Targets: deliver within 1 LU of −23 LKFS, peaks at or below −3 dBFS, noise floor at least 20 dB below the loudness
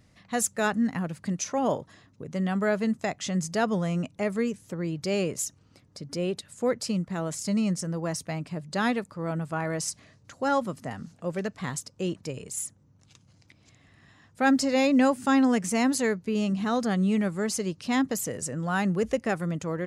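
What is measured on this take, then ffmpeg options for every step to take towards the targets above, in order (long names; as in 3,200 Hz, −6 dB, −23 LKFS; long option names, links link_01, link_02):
integrated loudness −28.0 LKFS; sample peak −11.5 dBFS; target loudness −23.0 LKFS
→ -af "volume=5dB"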